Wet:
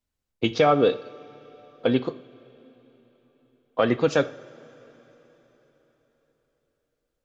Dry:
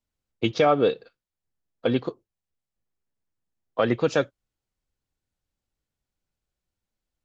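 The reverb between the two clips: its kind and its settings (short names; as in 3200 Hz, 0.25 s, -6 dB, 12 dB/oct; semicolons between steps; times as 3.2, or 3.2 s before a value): two-slope reverb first 0.56 s, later 4.3 s, from -16 dB, DRR 12.5 dB; gain +1 dB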